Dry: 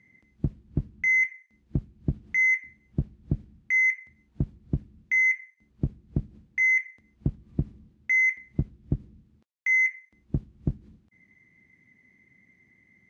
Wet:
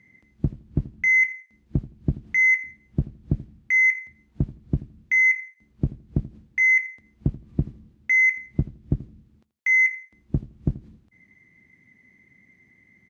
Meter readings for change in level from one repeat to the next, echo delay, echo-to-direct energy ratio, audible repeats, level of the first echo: -12.5 dB, 83 ms, -17.5 dB, 2, -17.5 dB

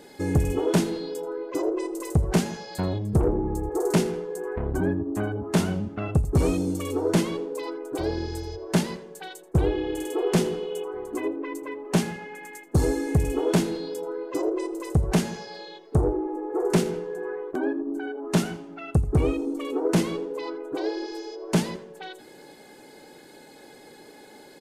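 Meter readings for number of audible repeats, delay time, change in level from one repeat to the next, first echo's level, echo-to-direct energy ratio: 2, 83 ms, -16.0 dB, -17.5 dB, -17.5 dB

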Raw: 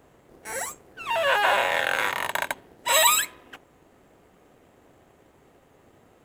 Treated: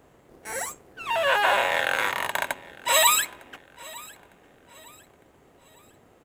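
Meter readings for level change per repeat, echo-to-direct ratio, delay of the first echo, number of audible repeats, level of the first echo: -8.5 dB, -21.5 dB, 905 ms, 2, -22.0 dB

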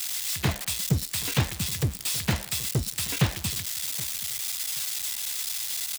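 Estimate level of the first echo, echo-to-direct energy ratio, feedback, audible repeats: -19.0 dB, -19.0 dB, 22%, 2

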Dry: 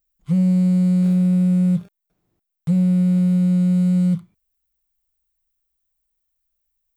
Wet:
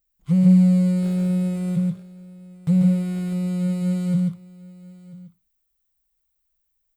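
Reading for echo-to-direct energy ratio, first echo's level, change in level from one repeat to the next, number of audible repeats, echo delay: -3.5 dB, -3.5 dB, no regular repeats, 3, 141 ms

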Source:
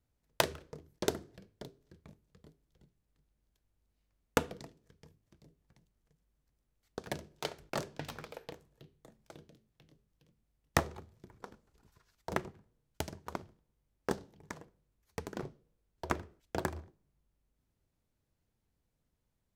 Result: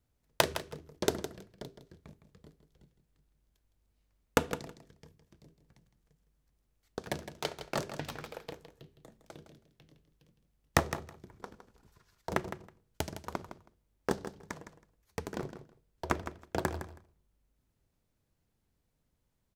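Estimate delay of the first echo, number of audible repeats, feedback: 161 ms, 2, 15%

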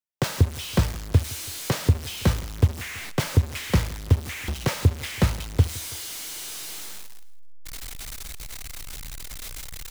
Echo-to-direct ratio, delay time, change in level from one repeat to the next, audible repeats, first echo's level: -19.5 dB, 164 ms, -5.0 dB, 2, -20.5 dB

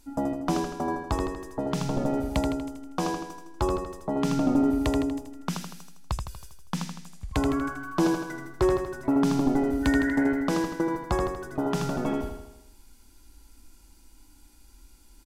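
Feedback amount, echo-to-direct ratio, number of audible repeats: 54%, -3.5 dB, 6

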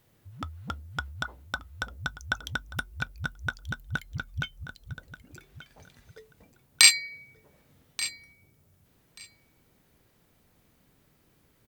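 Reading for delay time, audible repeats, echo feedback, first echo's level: 1183 ms, 2, 15%, -15.5 dB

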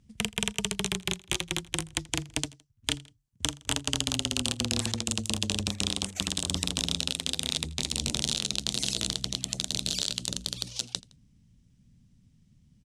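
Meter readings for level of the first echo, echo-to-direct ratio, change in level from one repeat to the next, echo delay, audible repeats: -23.0 dB, -22.0 dB, -5.5 dB, 82 ms, 2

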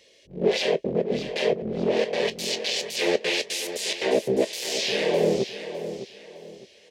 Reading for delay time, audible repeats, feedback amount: 608 ms, 3, 30%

